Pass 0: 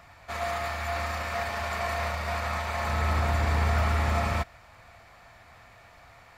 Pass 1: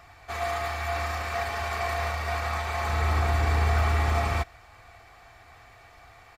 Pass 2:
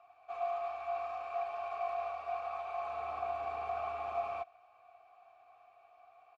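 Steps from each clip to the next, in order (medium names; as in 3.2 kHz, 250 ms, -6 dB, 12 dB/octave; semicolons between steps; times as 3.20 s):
comb 2.6 ms, depth 48%
vowel filter a; trim -2.5 dB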